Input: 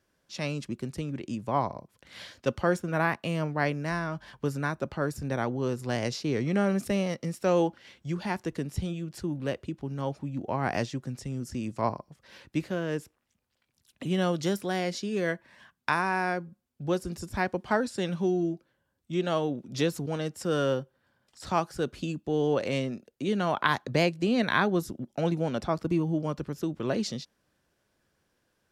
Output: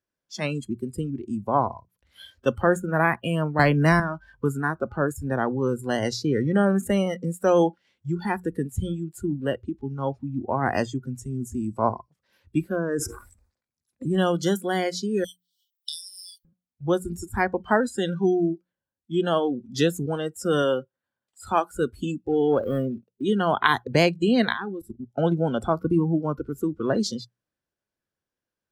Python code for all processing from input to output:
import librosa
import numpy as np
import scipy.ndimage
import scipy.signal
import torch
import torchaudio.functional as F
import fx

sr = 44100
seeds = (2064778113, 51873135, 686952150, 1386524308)

y = fx.chain(x, sr, fx.low_shelf(hz=130.0, db=5.0),
    fx.leveller(passes=1),
    fx.band_squash(depth_pct=100), at=(3.59, 4.0))
y = fx.chain(y, sr, fx.lowpass(hz=9600.0, slope=12),
    fx.peak_eq(hz=3000.0, db=-14.0, octaves=0.55),
    fx.sustainer(db_per_s=70.0), at=(12.76, 14.18))
y = fx.chain(y, sr, fx.brickwall_highpass(low_hz=2900.0),
    fx.high_shelf(hz=4000.0, db=9.0), at=(15.24, 16.45))
y = fx.chain(y, sr, fx.low_shelf(hz=270.0, db=-5.0),
    fx.notch(hz=5300.0, q=8.3), at=(20.62, 21.67))
y = fx.chain(y, sr, fx.median_filter(points=25),
    fx.high_shelf(hz=7700.0, db=-3.0), at=(22.27, 23.23))
y = fx.chain(y, sr, fx.high_shelf(hz=10000.0, db=-9.5),
    fx.level_steps(step_db=18), at=(24.52, 25.11))
y = fx.hum_notches(y, sr, base_hz=60, count=3)
y = fx.noise_reduce_blind(y, sr, reduce_db=21)
y = F.gain(torch.from_numpy(y), 5.5).numpy()